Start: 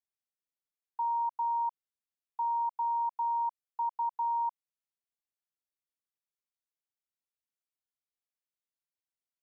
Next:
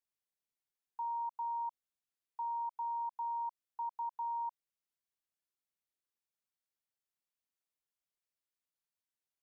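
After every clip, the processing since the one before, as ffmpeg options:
ffmpeg -i in.wav -af "alimiter=level_in=8.5dB:limit=-24dB:level=0:latency=1,volume=-8.5dB,volume=-1.5dB" out.wav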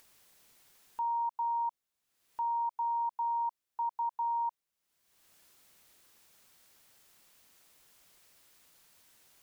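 ffmpeg -i in.wav -af "acompressor=mode=upward:threshold=-50dB:ratio=2.5,volume=5.5dB" out.wav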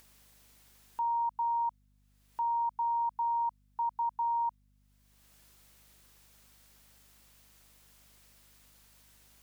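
ffmpeg -i in.wav -af "aeval=exprs='val(0)+0.000398*(sin(2*PI*50*n/s)+sin(2*PI*2*50*n/s)/2+sin(2*PI*3*50*n/s)/3+sin(2*PI*4*50*n/s)/4+sin(2*PI*5*50*n/s)/5)':channel_layout=same,volume=1.5dB" out.wav

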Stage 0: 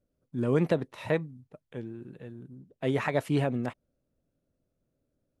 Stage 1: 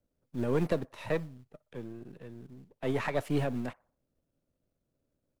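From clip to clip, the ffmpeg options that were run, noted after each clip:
ffmpeg -i in.wav -filter_complex "[0:a]aeval=exprs='if(lt(val(0),0),0.447*val(0),val(0))':channel_layout=same,acrossover=split=200|600|2200[link_01][link_02][link_03][link_04];[link_01]acrusher=bits=5:mode=log:mix=0:aa=0.000001[link_05];[link_03]asplit=2[link_06][link_07];[link_07]adelay=61,lowpass=frequency=1500:poles=1,volume=-18.5dB,asplit=2[link_08][link_09];[link_09]adelay=61,lowpass=frequency=1500:poles=1,volume=0.48,asplit=2[link_10][link_11];[link_11]adelay=61,lowpass=frequency=1500:poles=1,volume=0.48,asplit=2[link_12][link_13];[link_13]adelay=61,lowpass=frequency=1500:poles=1,volume=0.48[link_14];[link_06][link_08][link_10][link_12][link_14]amix=inputs=5:normalize=0[link_15];[link_05][link_02][link_15][link_04]amix=inputs=4:normalize=0" out.wav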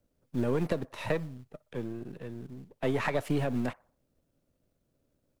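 ffmpeg -i in.wav -af "acompressor=threshold=-30dB:ratio=10,volume=5.5dB" out.wav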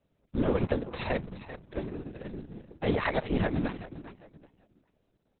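ffmpeg -i in.wav -af "afftfilt=real='hypot(re,im)*cos(2*PI*random(0))':imag='hypot(re,im)*sin(2*PI*random(1))':win_size=512:overlap=0.75,aecho=1:1:391|782|1173:0.211|0.055|0.0143,volume=8dB" -ar 48000 -c:a libopus -b:a 6k out.opus

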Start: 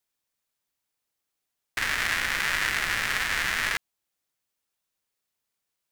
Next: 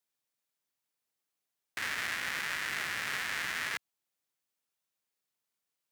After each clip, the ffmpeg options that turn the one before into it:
ffmpeg -i in.wav -af "alimiter=limit=-16dB:level=0:latency=1:release=26,highpass=110,volume=-4.5dB" out.wav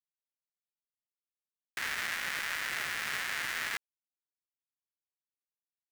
ffmpeg -i in.wav -af "acrusher=bits=6:mix=0:aa=0.000001" out.wav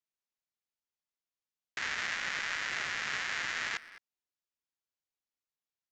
ffmpeg -i in.wav -filter_complex "[0:a]aresample=16000,aresample=44100,asplit=2[link_01][link_02];[link_02]adelay=210,highpass=300,lowpass=3400,asoftclip=type=hard:threshold=-30dB,volume=-14dB[link_03];[link_01][link_03]amix=inputs=2:normalize=0" out.wav

